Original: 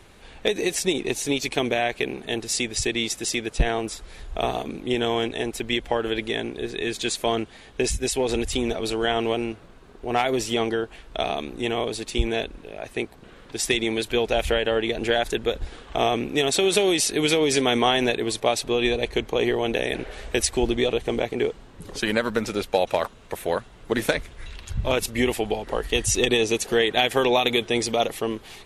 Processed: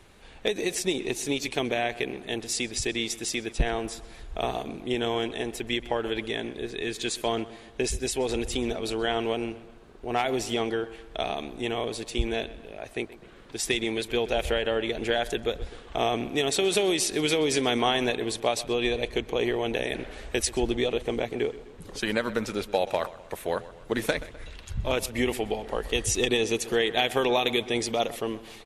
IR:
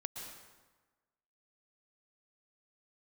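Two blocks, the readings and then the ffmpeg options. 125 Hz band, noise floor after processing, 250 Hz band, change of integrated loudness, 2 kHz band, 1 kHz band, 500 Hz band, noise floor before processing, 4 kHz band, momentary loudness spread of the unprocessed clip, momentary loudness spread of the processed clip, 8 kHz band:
-4.0 dB, -48 dBFS, -4.0 dB, -4.0 dB, -4.0 dB, -4.0 dB, -4.0 dB, -47 dBFS, -4.0 dB, 10 LU, 10 LU, -4.0 dB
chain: -filter_complex "[0:a]asplit=2[a][b];[b]adelay=127,lowpass=f=3.6k:p=1,volume=-16.5dB,asplit=2[c][d];[d]adelay=127,lowpass=f=3.6k:p=1,volume=0.52,asplit=2[e][f];[f]adelay=127,lowpass=f=3.6k:p=1,volume=0.52,asplit=2[g][h];[h]adelay=127,lowpass=f=3.6k:p=1,volume=0.52,asplit=2[i][j];[j]adelay=127,lowpass=f=3.6k:p=1,volume=0.52[k];[a][c][e][g][i][k]amix=inputs=6:normalize=0,volume=-4dB"

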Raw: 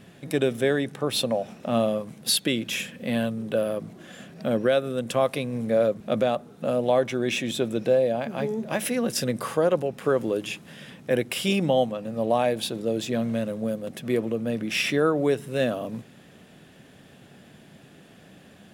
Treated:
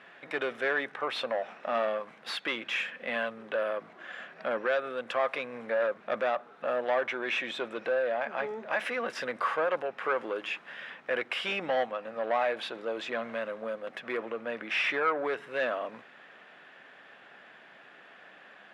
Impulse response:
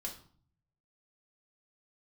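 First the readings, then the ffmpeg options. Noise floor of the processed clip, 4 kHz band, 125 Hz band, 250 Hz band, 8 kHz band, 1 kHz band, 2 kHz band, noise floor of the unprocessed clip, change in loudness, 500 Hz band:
-54 dBFS, -7.5 dB, under -20 dB, -16.0 dB, under -20 dB, -1.0 dB, +2.0 dB, -51 dBFS, -6.0 dB, -7.0 dB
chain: -filter_complex "[0:a]asplit=2[a][b];[b]highpass=f=720:p=1,volume=16dB,asoftclip=type=tanh:threshold=-11dB[c];[a][c]amix=inputs=2:normalize=0,lowpass=f=1.5k:p=1,volume=-6dB,bandpass=f=1.6k:t=q:w=1.1:csg=0"

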